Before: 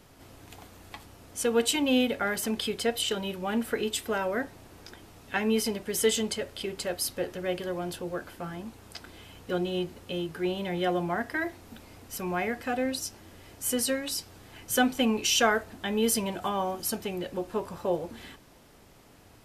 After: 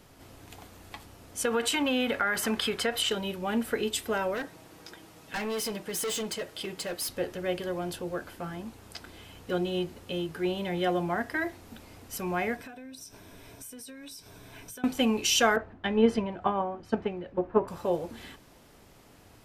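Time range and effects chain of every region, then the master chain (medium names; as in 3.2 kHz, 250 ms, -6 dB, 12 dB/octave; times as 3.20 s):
1.45–3.10 s: peaking EQ 1.4 kHz +10.5 dB 1.6 oct + compression, threshold -23 dBFS
4.34–7.09 s: high-pass 140 Hz 6 dB/octave + comb 6.3 ms, depth 44% + overload inside the chain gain 29.5 dB
12.56–14.84 s: rippled EQ curve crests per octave 1.6, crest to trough 8 dB + compression 16:1, threshold -41 dBFS
15.56–17.68 s: low-pass 1.9 kHz + transient shaper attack +7 dB, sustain +3 dB + three bands expanded up and down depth 100%
whole clip: none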